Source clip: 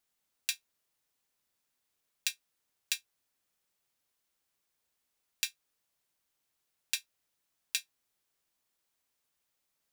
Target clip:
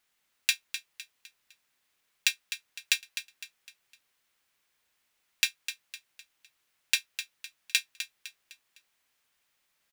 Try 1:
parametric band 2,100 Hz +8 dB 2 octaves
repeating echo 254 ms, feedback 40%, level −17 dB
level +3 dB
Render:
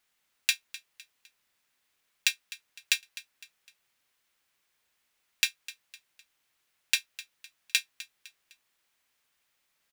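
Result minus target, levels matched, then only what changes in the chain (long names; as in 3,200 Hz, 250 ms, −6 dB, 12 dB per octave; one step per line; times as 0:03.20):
echo-to-direct −6.5 dB
change: repeating echo 254 ms, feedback 40%, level −10.5 dB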